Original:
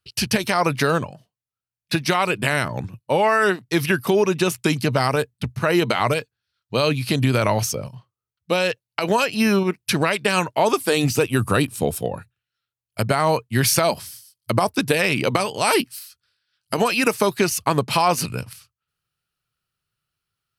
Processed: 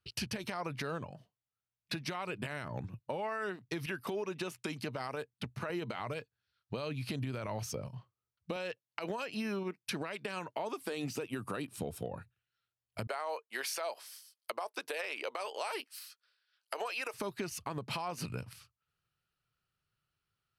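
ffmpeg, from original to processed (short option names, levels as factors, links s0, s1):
-filter_complex "[0:a]asettb=1/sr,asplit=3[s0][s1][s2];[s0]atrim=end=3.864[s3];[s1]atrim=start=3.86:end=5.7,asetpts=PTS-STARTPTS,afade=t=in:d=0.004:c=qsin,afade=t=out:st=1.836:d=0.004:c=qsin,highpass=f=280:p=1[s4];[s2]atrim=start=5.696[s5];[s3][s4]acrossfade=d=0.004:c1=hsin:c2=qsin[s6];[s6][s5]acrossfade=d=0.004:c1=qsin:c2=hsin,asettb=1/sr,asplit=3[s7][s8][s9];[s7]atrim=end=8.564[s10];[s8]atrim=start=8.56:end=11.78,asetpts=PTS-STARTPTS,afade=t=in:d=0.004:c=qsin,afade=t=out:st=3.216:d=0.004:c=qsin,highpass=180[s11];[s9]atrim=start=11.776[s12];[s10][s11]acrossfade=d=0.004:c1=hsin:c2=qsin[s13];[s13][s12]acrossfade=d=0.004:c1=qsin:c2=hsin,asettb=1/sr,asplit=3[s14][s15][s16];[s14]atrim=end=13.074[s17];[s15]atrim=start=13.07:end=17.14,asetpts=PTS-STARTPTS,afade=t=in:d=0.004:c=qsin,afade=t=out:st=4.066:d=0.004:c=qsin,highpass=f=460:w=0.5412,highpass=f=460:w=1.3066[s18];[s16]atrim=start=17.136[s19];[s17][s18]acrossfade=d=0.004:c1=hsin:c2=qsin[s20];[s20][s19]acrossfade=d=0.004:c1=qsin:c2=hsin,highshelf=f=5100:g=-9.5,alimiter=limit=0.2:level=0:latency=1:release=125,acompressor=threshold=0.0158:ratio=3,volume=0.75"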